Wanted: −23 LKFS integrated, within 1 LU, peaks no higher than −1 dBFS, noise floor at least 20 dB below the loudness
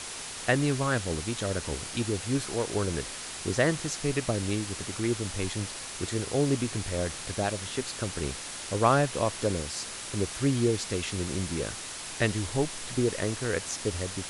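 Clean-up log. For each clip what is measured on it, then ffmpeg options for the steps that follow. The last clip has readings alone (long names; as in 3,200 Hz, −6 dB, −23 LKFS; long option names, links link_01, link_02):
background noise floor −39 dBFS; target noise floor −50 dBFS; integrated loudness −30.0 LKFS; sample peak −8.5 dBFS; target loudness −23.0 LKFS
→ -af "afftdn=noise_reduction=11:noise_floor=-39"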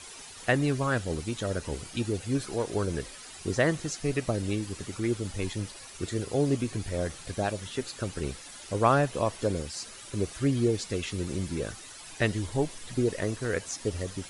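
background noise floor −46 dBFS; target noise floor −51 dBFS
→ -af "afftdn=noise_reduction=6:noise_floor=-46"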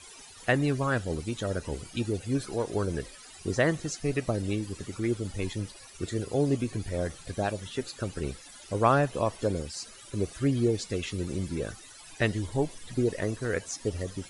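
background noise floor −49 dBFS; target noise floor −51 dBFS
→ -af "afftdn=noise_reduction=6:noise_floor=-49"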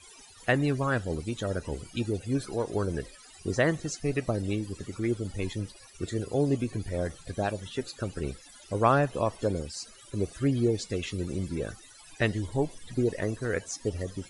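background noise floor −52 dBFS; integrated loudness −30.5 LKFS; sample peak −9.0 dBFS; target loudness −23.0 LKFS
→ -af "volume=7.5dB"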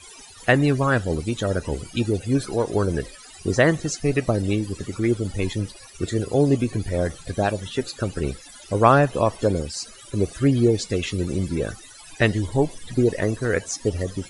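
integrated loudness −23.0 LKFS; sample peak −1.5 dBFS; background noise floor −45 dBFS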